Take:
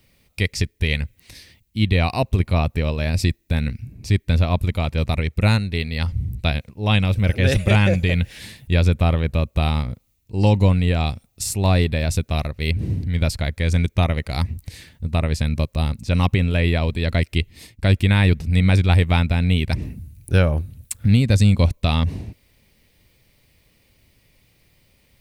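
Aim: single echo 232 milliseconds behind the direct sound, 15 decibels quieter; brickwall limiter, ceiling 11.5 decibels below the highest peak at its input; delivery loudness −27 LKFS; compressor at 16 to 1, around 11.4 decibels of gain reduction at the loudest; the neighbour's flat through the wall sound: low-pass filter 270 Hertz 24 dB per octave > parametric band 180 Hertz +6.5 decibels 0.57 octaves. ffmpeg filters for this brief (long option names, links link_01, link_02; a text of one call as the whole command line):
ffmpeg -i in.wav -af "acompressor=threshold=-22dB:ratio=16,alimiter=limit=-18.5dB:level=0:latency=1,lowpass=frequency=270:width=0.5412,lowpass=frequency=270:width=1.3066,equalizer=frequency=180:width_type=o:width=0.57:gain=6.5,aecho=1:1:232:0.178,volume=2dB" out.wav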